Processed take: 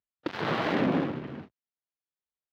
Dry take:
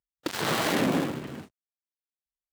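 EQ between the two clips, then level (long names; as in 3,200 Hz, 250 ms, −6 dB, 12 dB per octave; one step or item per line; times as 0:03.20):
high-pass filter 67 Hz
high-frequency loss of the air 290 metres
0.0 dB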